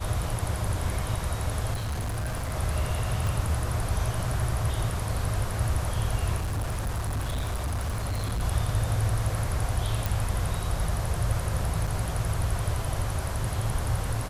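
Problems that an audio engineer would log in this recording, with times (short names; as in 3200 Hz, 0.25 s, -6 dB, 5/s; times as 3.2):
1.73–2.54 clipped -27 dBFS
3.27 pop
6.36–8.42 clipped -25.5 dBFS
10.06 pop
11.87–11.88 gap 5.1 ms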